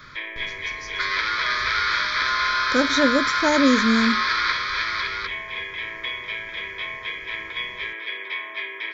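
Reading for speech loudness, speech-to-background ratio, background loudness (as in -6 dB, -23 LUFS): -21.5 LUFS, 2.5 dB, -24.0 LUFS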